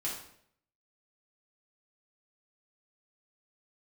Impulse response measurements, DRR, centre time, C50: -6.0 dB, 38 ms, 3.5 dB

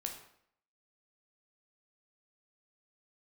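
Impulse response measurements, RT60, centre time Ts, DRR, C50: 0.65 s, 22 ms, 2.5 dB, 7.0 dB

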